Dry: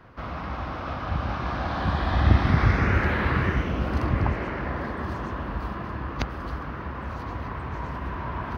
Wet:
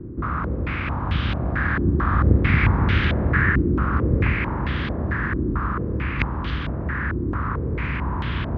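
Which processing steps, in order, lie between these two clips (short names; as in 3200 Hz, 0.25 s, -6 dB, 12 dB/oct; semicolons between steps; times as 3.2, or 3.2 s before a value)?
per-bin compression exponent 0.6; bell 730 Hz -13.5 dB 1 oct; stepped low-pass 4.5 Hz 350–3300 Hz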